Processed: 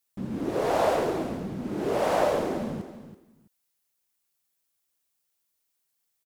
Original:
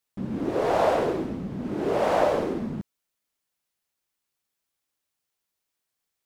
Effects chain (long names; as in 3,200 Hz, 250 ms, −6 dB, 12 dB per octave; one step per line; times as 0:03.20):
high-shelf EQ 6,300 Hz +9.5 dB
on a send: repeating echo 331 ms, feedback 19%, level −12.5 dB
on the sum: level −2 dB